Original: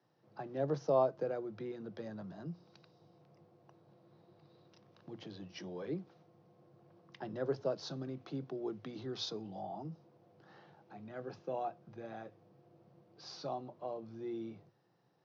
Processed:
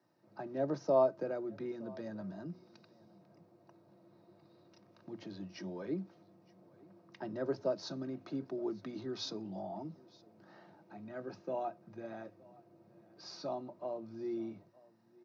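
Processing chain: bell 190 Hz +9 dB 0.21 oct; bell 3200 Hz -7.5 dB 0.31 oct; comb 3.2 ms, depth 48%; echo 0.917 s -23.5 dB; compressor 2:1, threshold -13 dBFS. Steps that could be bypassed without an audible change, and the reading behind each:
compressor, threshold -13 dBFS: input peak -18.0 dBFS

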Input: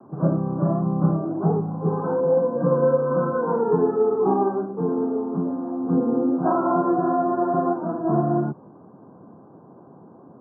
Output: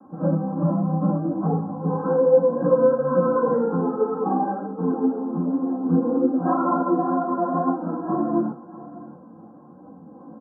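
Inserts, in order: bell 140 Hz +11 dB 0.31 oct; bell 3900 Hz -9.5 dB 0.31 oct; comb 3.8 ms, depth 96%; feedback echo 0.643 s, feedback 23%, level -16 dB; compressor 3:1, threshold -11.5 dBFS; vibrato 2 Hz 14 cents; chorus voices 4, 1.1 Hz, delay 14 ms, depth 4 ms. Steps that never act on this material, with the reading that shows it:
bell 3900 Hz: input band ends at 1400 Hz

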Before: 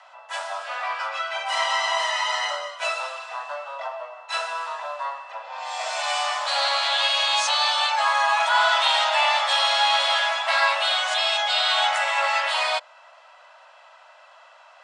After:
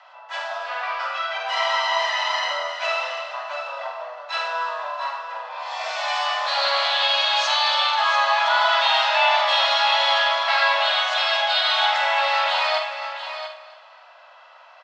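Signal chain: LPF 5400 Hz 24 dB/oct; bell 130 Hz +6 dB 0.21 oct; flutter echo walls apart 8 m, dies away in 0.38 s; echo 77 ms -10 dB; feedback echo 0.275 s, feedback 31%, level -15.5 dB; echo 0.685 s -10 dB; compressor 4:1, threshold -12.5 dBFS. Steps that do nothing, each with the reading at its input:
bell 130 Hz: input band starts at 480 Hz

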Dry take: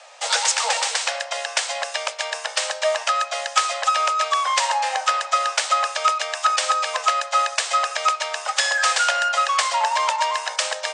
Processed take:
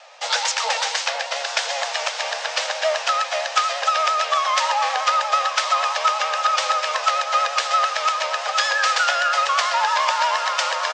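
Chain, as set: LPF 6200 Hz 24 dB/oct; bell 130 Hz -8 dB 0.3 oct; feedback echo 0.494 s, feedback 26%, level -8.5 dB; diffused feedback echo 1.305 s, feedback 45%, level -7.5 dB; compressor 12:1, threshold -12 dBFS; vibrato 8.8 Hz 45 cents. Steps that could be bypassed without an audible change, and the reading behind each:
bell 130 Hz: input band starts at 450 Hz

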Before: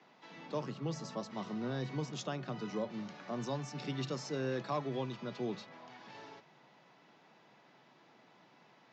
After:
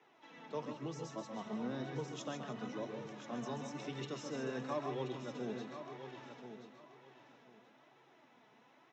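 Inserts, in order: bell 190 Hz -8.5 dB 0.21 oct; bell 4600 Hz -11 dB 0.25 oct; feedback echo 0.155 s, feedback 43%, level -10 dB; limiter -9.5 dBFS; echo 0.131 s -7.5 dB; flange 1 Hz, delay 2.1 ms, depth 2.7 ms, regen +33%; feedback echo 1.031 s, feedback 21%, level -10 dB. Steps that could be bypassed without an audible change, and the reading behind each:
limiter -9.5 dBFS: input peak -23.5 dBFS

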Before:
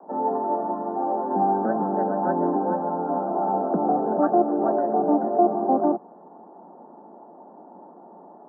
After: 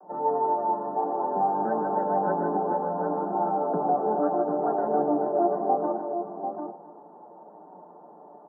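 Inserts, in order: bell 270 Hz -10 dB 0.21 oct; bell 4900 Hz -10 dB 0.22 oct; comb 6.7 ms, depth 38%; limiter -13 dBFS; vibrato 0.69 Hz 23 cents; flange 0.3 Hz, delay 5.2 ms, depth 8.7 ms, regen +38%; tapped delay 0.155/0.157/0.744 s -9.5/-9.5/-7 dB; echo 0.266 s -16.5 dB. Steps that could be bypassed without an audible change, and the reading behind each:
bell 4900 Hz: input band ends at 1400 Hz

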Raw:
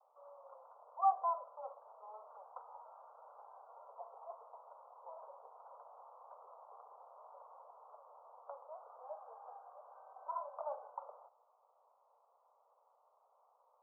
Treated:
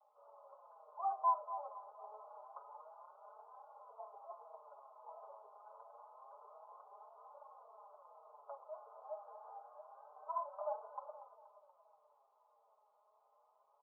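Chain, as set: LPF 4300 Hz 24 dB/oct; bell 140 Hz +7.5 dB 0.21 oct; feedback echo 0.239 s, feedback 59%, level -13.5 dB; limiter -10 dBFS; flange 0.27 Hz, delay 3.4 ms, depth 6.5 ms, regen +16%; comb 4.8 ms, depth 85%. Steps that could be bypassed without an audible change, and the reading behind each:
LPF 4300 Hz: input band ends at 1400 Hz; bell 140 Hz: input band starts at 400 Hz; limiter -10 dBFS: input peak -20.5 dBFS

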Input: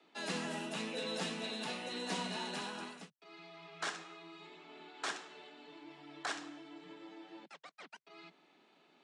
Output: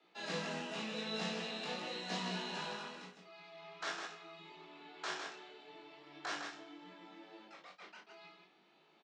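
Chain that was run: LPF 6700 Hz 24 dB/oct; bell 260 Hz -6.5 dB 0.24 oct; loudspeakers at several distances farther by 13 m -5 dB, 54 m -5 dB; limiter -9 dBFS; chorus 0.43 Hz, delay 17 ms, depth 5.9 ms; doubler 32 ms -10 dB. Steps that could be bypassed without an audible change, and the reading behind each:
limiter -9 dBFS: input peak -23.5 dBFS

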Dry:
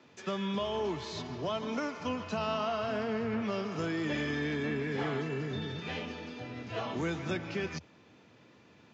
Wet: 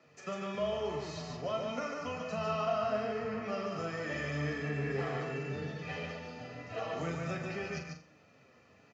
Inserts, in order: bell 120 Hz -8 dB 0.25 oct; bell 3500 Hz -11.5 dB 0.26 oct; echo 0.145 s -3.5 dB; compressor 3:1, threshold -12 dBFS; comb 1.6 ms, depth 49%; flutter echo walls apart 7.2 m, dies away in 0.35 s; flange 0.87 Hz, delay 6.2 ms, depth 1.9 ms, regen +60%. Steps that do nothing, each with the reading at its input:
compressor, threshold -12 dBFS: input peak -20.0 dBFS

